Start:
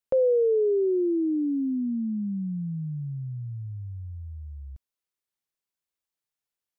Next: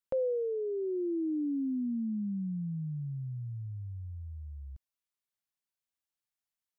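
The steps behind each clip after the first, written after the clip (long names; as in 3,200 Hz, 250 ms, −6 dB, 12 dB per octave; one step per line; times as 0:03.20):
parametric band 430 Hz −7.5 dB 0.69 octaves
level −4 dB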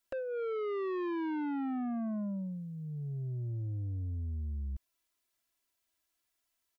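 comb filter 3 ms, depth 79%
in parallel at +3 dB: brickwall limiter −33 dBFS, peak gain reduction 9.5 dB
on the sum: soft clipping −33.5 dBFS, distortion −7 dB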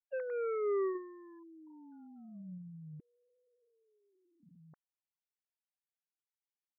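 three sine waves on the formant tracks
level −5.5 dB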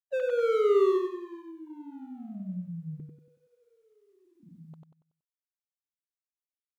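running median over 25 samples
repeating echo 94 ms, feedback 36%, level −3.5 dB
level +9 dB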